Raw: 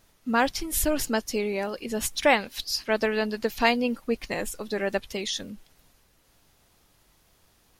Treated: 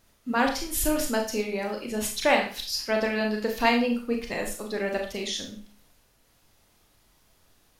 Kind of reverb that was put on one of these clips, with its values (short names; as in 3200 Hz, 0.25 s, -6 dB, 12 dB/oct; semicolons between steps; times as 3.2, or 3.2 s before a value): Schroeder reverb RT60 0.4 s, combs from 26 ms, DRR 2 dB; gain -2.5 dB